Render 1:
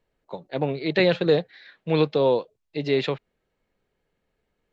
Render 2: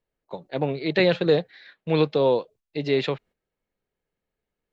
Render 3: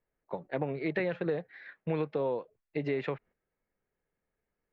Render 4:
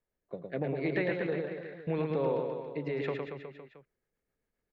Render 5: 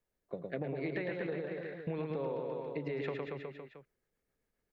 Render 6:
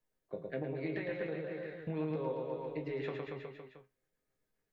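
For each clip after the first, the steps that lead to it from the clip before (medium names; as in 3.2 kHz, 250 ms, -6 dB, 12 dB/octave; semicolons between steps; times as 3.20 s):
gate -49 dBFS, range -9 dB
resonant high shelf 2.8 kHz -11.5 dB, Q 1.5; compression 6:1, threshold -27 dBFS, peak gain reduction 12.5 dB; trim -1.5 dB
rotary cabinet horn 0.8 Hz, later 7.5 Hz, at 2.74 s; reverse bouncing-ball echo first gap 110 ms, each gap 1.1×, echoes 5
compression 5:1, threshold -35 dBFS, peak gain reduction 9 dB; trim +1 dB
chord resonator G#2 major, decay 0.2 s; trim +9.5 dB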